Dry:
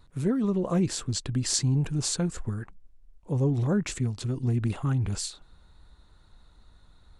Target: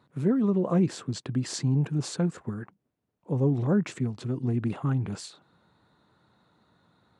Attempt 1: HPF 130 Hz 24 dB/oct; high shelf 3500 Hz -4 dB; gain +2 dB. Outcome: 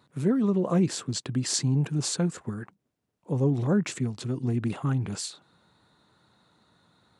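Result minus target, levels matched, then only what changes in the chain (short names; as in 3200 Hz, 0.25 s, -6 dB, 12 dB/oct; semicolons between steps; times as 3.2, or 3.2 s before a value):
8000 Hz band +8.0 dB
change: high shelf 3500 Hz -14.5 dB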